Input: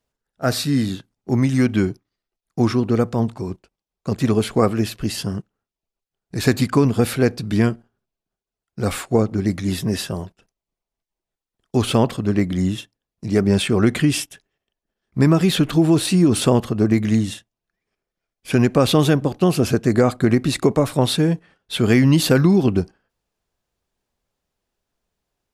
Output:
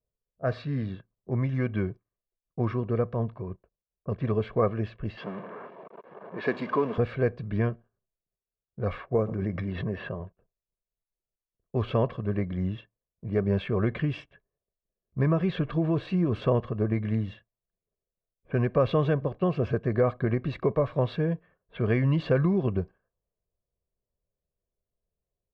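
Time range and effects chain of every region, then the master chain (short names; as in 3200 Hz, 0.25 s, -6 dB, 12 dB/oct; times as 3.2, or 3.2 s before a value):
5.17–6.98 zero-crossing step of -23 dBFS + HPF 210 Hz 24 dB/oct + bell 900 Hz +4.5 dB 0.25 oct
9.15–10.2 low shelf 68 Hz -10 dB + careless resampling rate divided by 6×, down filtered, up hold + backwards sustainer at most 37 dB/s
whole clip: low-pass opened by the level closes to 570 Hz, open at -16 dBFS; Bessel low-pass 1900 Hz, order 4; comb 1.8 ms, depth 55%; gain -8.5 dB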